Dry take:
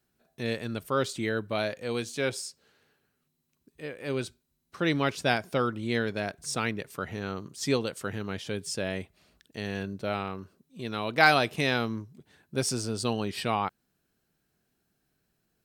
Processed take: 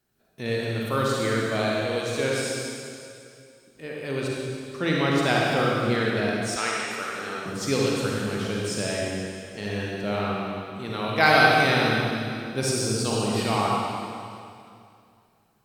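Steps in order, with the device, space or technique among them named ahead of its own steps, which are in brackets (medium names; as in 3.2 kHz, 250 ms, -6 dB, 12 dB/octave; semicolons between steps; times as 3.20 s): stairwell (reverberation RT60 2.5 s, pre-delay 39 ms, DRR -4 dB); 6.56–7.46 s: frequency weighting A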